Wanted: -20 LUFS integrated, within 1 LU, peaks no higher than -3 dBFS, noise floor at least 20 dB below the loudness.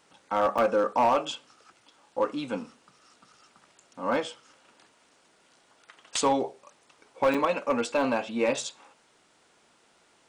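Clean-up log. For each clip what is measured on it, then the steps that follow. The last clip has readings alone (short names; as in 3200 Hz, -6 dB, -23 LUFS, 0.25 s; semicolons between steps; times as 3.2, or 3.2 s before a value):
clipped 0.5%; flat tops at -16.5 dBFS; dropouts 2; longest dropout 5.6 ms; loudness -27.5 LUFS; peak -16.5 dBFS; loudness target -20.0 LUFS
-> clip repair -16.5 dBFS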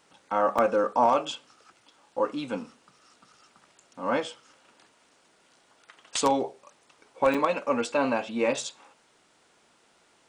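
clipped 0.0%; dropouts 2; longest dropout 5.6 ms
-> interpolate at 0.58/7.34, 5.6 ms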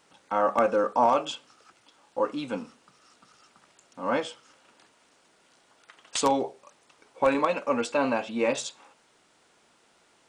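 dropouts 0; loudness -27.0 LUFS; peak -8.0 dBFS; loudness target -20.0 LUFS
-> gain +7 dB; limiter -3 dBFS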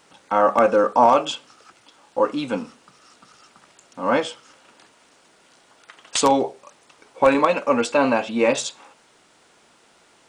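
loudness -20.5 LUFS; peak -3.0 dBFS; noise floor -57 dBFS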